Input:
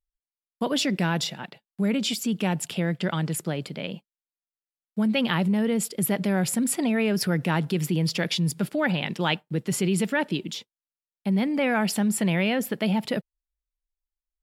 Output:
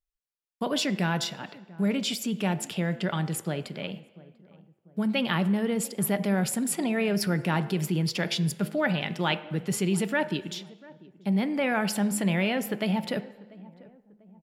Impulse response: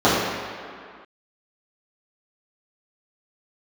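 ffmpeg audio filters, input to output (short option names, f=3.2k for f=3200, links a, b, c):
-filter_complex "[0:a]asplit=2[a][b];[b]adelay=693,lowpass=f=940:p=1,volume=-20dB,asplit=2[c][d];[d]adelay=693,lowpass=f=940:p=1,volume=0.46,asplit=2[e][f];[f]adelay=693,lowpass=f=940:p=1,volume=0.46[g];[a][c][e][g]amix=inputs=4:normalize=0,asplit=2[h][i];[1:a]atrim=start_sample=2205,asetrate=83790,aresample=44100[j];[i][j]afir=irnorm=-1:irlink=0,volume=-32.5dB[k];[h][k]amix=inputs=2:normalize=0,volume=-2.5dB"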